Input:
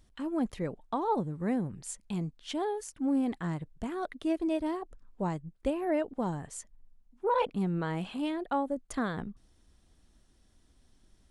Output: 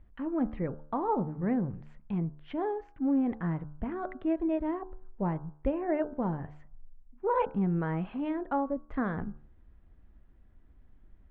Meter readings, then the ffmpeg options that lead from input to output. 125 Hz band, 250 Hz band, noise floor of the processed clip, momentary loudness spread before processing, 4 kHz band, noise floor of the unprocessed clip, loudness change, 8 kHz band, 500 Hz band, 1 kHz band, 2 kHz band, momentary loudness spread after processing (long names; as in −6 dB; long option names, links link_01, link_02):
+2.5 dB, +1.5 dB, −58 dBFS, 8 LU, below −10 dB, −65 dBFS, +1.0 dB, below −35 dB, 0.0 dB, 0.0 dB, −1.0 dB, 8 LU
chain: -af "lowpass=frequency=2200:width=0.5412,lowpass=frequency=2200:width=1.3066,lowshelf=frequency=120:gain=8.5,bandreject=frequency=74.53:width_type=h:width=4,bandreject=frequency=149.06:width_type=h:width=4,bandreject=frequency=223.59:width_type=h:width=4,bandreject=frequency=298.12:width_type=h:width=4,bandreject=frequency=372.65:width_type=h:width=4,bandreject=frequency=447.18:width_type=h:width=4,bandreject=frequency=521.71:width_type=h:width=4,bandreject=frequency=596.24:width_type=h:width=4,bandreject=frequency=670.77:width_type=h:width=4,bandreject=frequency=745.3:width_type=h:width=4,bandreject=frequency=819.83:width_type=h:width=4,bandreject=frequency=894.36:width_type=h:width=4,bandreject=frequency=968.89:width_type=h:width=4,bandreject=frequency=1043.42:width_type=h:width=4,bandreject=frequency=1117.95:width_type=h:width=4,bandreject=frequency=1192.48:width_type=h:width=4,bandreject=frequency=1267.01:width_type=h:width=4,bandreject=frequency=1341.54:width_type=h:width=4,bandreject=frequency=1416.07:width_type=h:width=4,bandreject=frequency=1490.6:width_type=h:width=4,bandreject=frequency=1565.13:width_type=h:width=4,bandreject=frequency=1639.66:width_type=h:width=4"